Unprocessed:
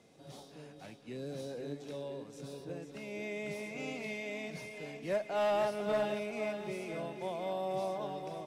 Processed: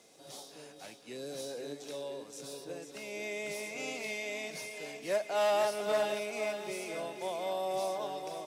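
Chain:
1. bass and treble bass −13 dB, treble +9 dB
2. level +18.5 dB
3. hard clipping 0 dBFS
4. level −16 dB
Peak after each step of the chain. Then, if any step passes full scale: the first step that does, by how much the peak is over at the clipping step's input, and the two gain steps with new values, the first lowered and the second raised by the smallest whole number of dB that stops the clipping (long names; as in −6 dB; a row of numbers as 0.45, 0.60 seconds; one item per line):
−23.0, −4.5, −4.5, −20.5 dBFS
no step passes full scale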